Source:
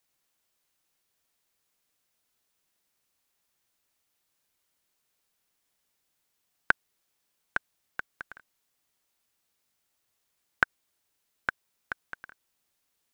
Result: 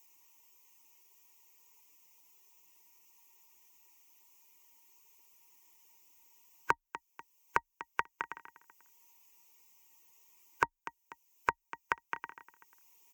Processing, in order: per-bin expansion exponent 1.5; high shelf 5200 Hz +10.5 dB; compressor, threshold -32 dBFS, peak gain reduction 15 dB; ripple EQ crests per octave 0.75, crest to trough 13 dB; feedback echo 0.245 s, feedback 20%, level -22 dB; overdrive pedal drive 16 dB, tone 2800 Hz, clips at -9 dBFS; HPF 40 Hz; small resonant body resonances 290/930/1900 Hz, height 12 dB, ringing for 60 ms; three-band squash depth 70%; gain +3.5 dB

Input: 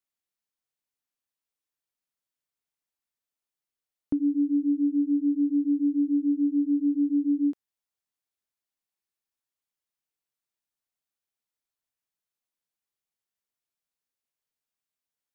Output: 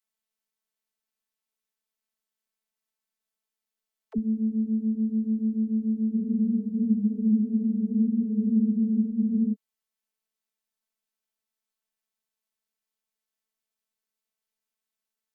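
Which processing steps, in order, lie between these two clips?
robotiser 219 Hz; dispersion lows, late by 62 ms, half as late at 300 Hz; spectral freeze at 6.17, 3.37 s; gain +3.5 dB

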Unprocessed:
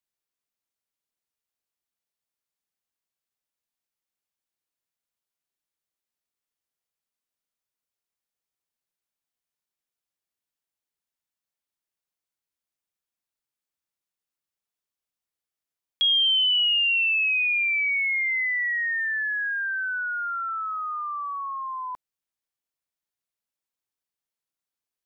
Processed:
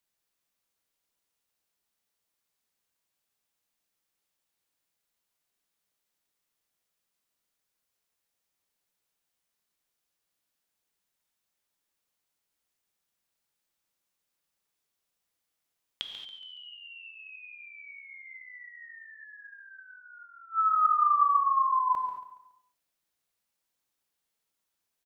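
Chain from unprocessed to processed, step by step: in parallel at -3 dB: negative-ratio compressor -25 dBFS, ratio -0.5; on the sum: flipped gate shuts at -21 dBFS, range -29 dB; feedback echo 0.14 s, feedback 39%, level -12.5 dB; non-linear reverb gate 0.25 s flat, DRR 4.5 dB

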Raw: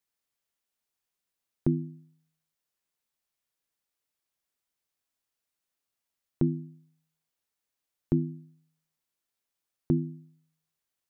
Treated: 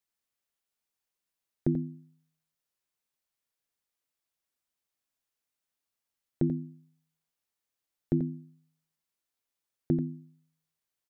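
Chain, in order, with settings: dynamic EQ 750 Hz, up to +6 dB, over -47 dBFS, Q 0.94; on a send: echo 87 ms -9 dB; on the sum: gain -2.5 dB

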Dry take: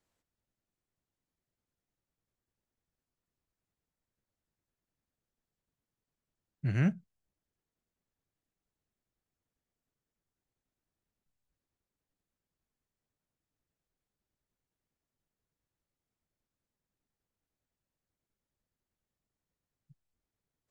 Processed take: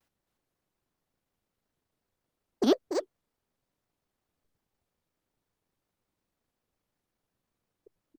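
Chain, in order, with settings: wide varispeed 2.53×; echo 0.278 s -6.5 dB; shaped vibrato square 5.5 Hz, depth 250 cents; gain +5.5 dB

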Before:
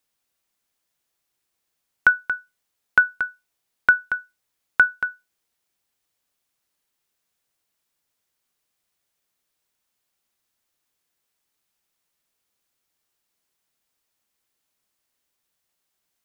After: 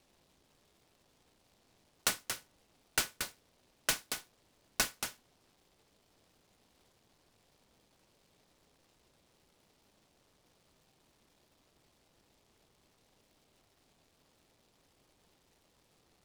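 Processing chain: differentiator; in parallel at +2 dB: compressor, threshold -37 dBFS, peak gain reduction 12.5 dB; on the sum: sample-and-hold 13×; air absorption 500 m; noise-modulated delay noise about 3400 Hz, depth 0.18 ms

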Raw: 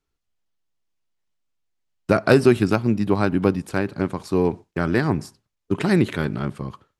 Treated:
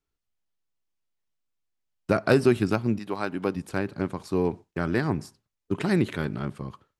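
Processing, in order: 2.98–3.55 HPF 850 Hz -> 300 Hz 6 dB/oct; gain -5 dB

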